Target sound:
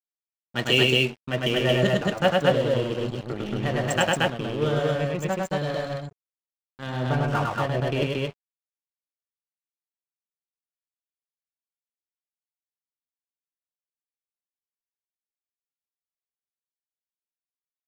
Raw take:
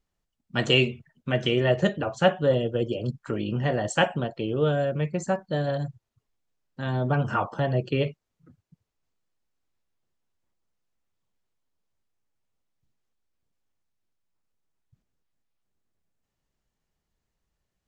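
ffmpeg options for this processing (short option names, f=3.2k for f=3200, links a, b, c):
-af "highshelf=f=3.4k:g=6,aeval=exprs='sgn(val(0))*max(abs(val(0))-0.0188,0)':c=same,aecho=1:1:102|227.4:0.794|0.891,volume=-1dB"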